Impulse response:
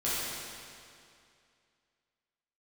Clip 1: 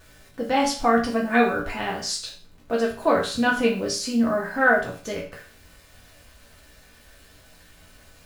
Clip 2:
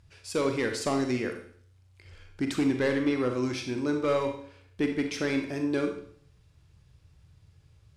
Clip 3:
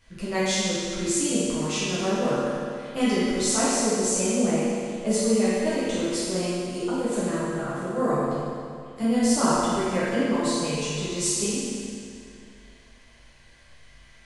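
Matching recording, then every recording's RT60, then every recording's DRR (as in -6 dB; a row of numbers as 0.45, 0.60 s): 3; 0.40, 0.55, 2.4 s; -3.5, 4.0, -11.0 dB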